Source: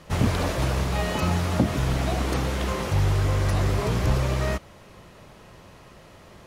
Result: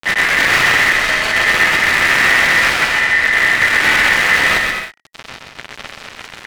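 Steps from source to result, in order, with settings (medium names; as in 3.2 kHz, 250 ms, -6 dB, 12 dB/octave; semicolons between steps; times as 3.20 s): treble shelf 4.8 kHz -9 dB; hum notches 60/120/180/240/300/360/420 Hz; peak limiter -19 dBFS, peak gain reduction 9.5 dB; trance gate "xxxxxxx....xx." 114 bpm -12 dB; granulator 100 ms, grains 20 per s; fuzz box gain 44 dB, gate -45 dBFS; ring modulator 1.9 kHz; on a send: bouncing-ball echo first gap 130 ms, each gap 0.65×, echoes 5; on the sum: loudspeaker Doppler distortion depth 0.13 ms; trim +3 dB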